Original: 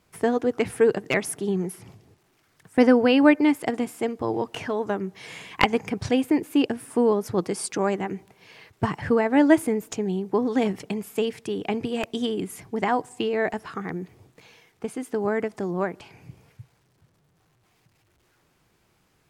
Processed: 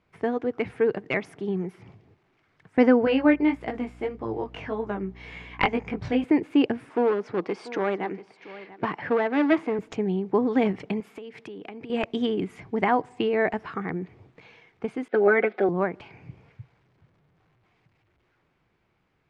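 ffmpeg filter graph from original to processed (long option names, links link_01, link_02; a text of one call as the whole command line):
ffmpeg -i in.wav -filter_complex "[0:a]asettb=1/sr,asplit=3[link_01][link_02][link_03];[link_01]atrim=end=3.054[link_04];[link_02]atrim=start=3.05:end=6.24,asetpts=PTS-STARTPTS,afade=type=in:duration=0.004:curve=qsin,afade=type=out:start_time=3.186:duration=0.004:curve=qsin,flanger=delay=18:depth=2.7:speed=1.7,aeval=exprs='val(0)+0.00501*(sin(2*PI*60*n/s)+sin(2*PI*2*60*n/s)/2+sin(2*PI*3*60*n/s)/3+sin(2*PI*4*60*n/s)/4+sin(2*PI*5*60*n/s)/5)':channel_layout=same[link_05];[link_03]atrim=start=6.236[link_06];[link_04][link_05]acrossfade=duration=0.004:curve1=hsin:curve2=qsin[link_07];[link_07][link_06]acrossfade=duration=0.004:curve1=qsin:curve2=hsin,asettb=1/sr,asplit=3[link_08][link_09][link_10];[link_08]atrim=end=6.894[link_11];[link_09]atrim=start=6.89:end=9.79,asetpts=PTS-STARTPTS,afade=type=in:duration=0.004:curve=qsin,afade=type=out:start_time=2.896:duration=0.004:curve=qsin,aeval=exprs='clip(val(0),-1,0.0891)':channel_layout=same,highpass=260,lowpass=5900,aecho=1:1:689:0.15,atrim=end_sample=127890[link_12];[link_10]atrim=start=9.786[link_13];[link_11][link_12]acrossfade=duration=0.004:curve1=hsin:curve2=qsin[link_14];[link_14][link_13]acrossfade=duration=0.004:curve1=qsin:curve2=hsin,asettb=1/sr,asplit=3[link_15][link_16][link_17];[link_15]atrim=end=11.004[link_18];[link_16]atrim=start=11:end=11.9,asetpts=PTS-STARTPTS,afade=type=in:duration=0.004:curve=qsin,afade=type=out:start_time=0.896:duration=0.004:curve=qsin,highpass=170,acompressor=threshold=-36dB:ratio=20:attack=3.2:release=140:knee=1:detection=peak,equalizer=frequency=12000:width=2.2:gain=4.5[link_19];[link_17]atrim=start=11.896[link_20];[link_18][link_19]acrossfade=duration=0.004:curve1=hsin:curve2=qsin[link_21];[link_21][link_20]acrossfade=duration=0.004:curve1=qsin:curve2=hsin,asettb=1/sr,asplit=3[link_22][link_23][link_24];[link_22]atrim=end=15.084[link_25];[link_23]atrim=start=15.08:end=15.69,asetpts=PTS-STARTPTS,afade=type=in:duration=0.004:curve=qsin,afade=type=out:start_time=0.606:duration=0.004:curve=qsin,agate=range=-33dB:threshold=-49dB:ratio=3:release=100:detection=peak,highpass=frequency=260:width=0.5412,highpass=frequency=260:width=1.3066,equalizer=frequency=490:width_type=q:width=4:gain=9,equalizer=frequency=720:width_type=q:width=4:gain=8,equalizer=frequency=1000:width_type=q:width=4:gain=-8,equalizer=frequency=1500:width_type=q:width=4:gain=9,equalizer=frequency=2300:width_type=q:width=4:gain=6,equalizer=frequency=3700:width_type=q:width=4:gain=7,lowpass=frequency=4000:width=0.5412,lowpass=frequency=4000:width=1.3066,aecho=1:1:5.4:0.95,atrim=end_sample=26901[link_26];[link_24]atrim=start=15.686[link_27];[link_25][link_26]acrossfade=duration=0.004:curve1=hsin:curve2=qsin[link_28];[link_28][link_27]acrossfade=duration=0.004:curve1=qsin:curve2=hsin,lowpass=2900,equalizer=frequency=2200:width=7.1:gain=4,dynaudnorm=framelen=160:gausssize=21:maxgain=5.5dB,volume=-4dB" out.wav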